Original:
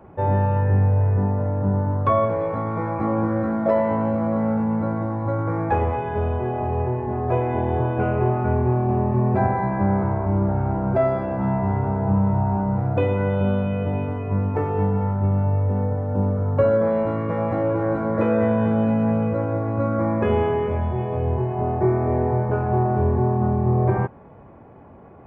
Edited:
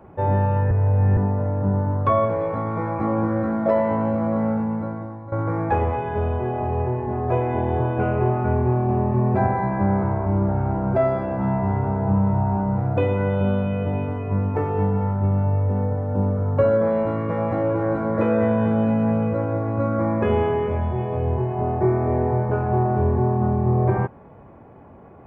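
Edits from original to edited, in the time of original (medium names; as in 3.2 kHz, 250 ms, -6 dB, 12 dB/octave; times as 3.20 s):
0.71–1.17 s: reverse
4.45–5.32 s: fade out linear, to -15 dB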